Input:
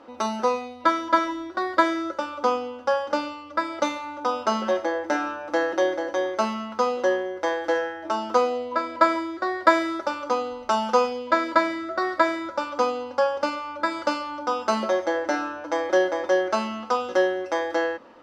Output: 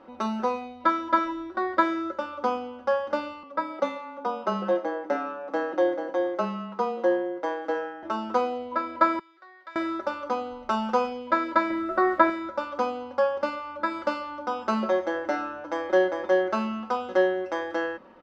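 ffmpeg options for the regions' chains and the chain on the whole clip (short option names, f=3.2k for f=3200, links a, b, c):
-filter_complex "[0:a]asettb=1/sr,asplit=3[a][b][c];[a]atrim=end=3.434[d];[b]atrim=start=3.43:end=8.03,asetpts=PTS-STARTPTS,afade=t=in:d=0.004:c=qsin,afade=t=out:st=4.596:d=0.004:c=qsin,highpass=360,tiltshelf=f=920:g=4.5,afreqshift=-20[e];[c]atrim=start=8.026[f];[d][e]acrossfade=d=0.004:c1=hsin:c2=qsin[g];[g][f]acrossfade=d=0.004:c1=qsin:c2=hsin,asettb=1/sr,asplit=3[h][i][j];[h]atrim=end=9.194[k];[i]atrim=start=9.19:end=9.76,asetpts=PTS-STARTPTS,afade=t=in:d=0.004:c=qsin,afade=t=out:st=0.566:d=0.004:c=qsin,acompressor=threshold=-34dB:ratio=1.5:attack=3.2:release=140:knee=1:detection=peak,highpass=160,lowpass=3.8k,aderivative[l];[j]atrim=start=9.756[m];[k][l]acrossfade=d=0.004:c1=hsin:c2=qsin[n];[n][m]acrossfade=d=0.004:c1=qsin:c2=hsin,asettb=1/sr,asplit=3[o][p][q];[o]atrim=end=11.704[r];[p]atrim=start=11.7:end=12.3,asetpts=PTS-STARTPTS,afade=t=in:d=0.004:c=qsin,afade=t=out:st=0.596:d=0.004:c=qsin,aemphasis=mode=reproduction:type=75kf,acontrast=35,aeval=exprs='sgn(val(0))*max(abs(val(0))-0.00355,0)':c=same[s];[q]atrim=start=12.296[t];[r][s]acrossfade=d=0.004:c1=hsin:c2=qsin[u];[u][t]acrossfade=d=0.004:c1=qsin:c2=hsin,bass=f=250:g=6,treble=f=4k:g=-10,aecho=1:1:5.3:0.34,volume=-3.5dB"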